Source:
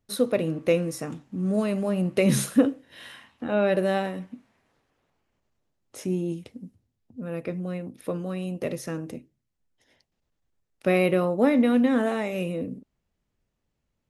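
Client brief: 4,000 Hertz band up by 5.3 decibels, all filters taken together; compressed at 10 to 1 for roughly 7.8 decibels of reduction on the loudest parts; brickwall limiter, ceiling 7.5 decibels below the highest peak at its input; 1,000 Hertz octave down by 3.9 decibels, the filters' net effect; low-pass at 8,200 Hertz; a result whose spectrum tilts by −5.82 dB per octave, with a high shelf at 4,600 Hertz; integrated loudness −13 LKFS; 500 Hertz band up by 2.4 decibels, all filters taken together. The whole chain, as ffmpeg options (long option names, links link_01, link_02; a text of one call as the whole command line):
ffmpeg -i in.wav -af "lowpass=8200,equalizer=frequency=500:width_type=o:gain=5,equalizer=frequency=1000:width_type=o:gain=-9,equalizer=frequency=4000:width_type=o:gain=8.5,highshelf=frequency=4600:gain=-3,acompressor=threshold=-21dB:ratio=10,volume=17dB,alimiter=limit=-2.5dB:level=0:latency=1" out.wav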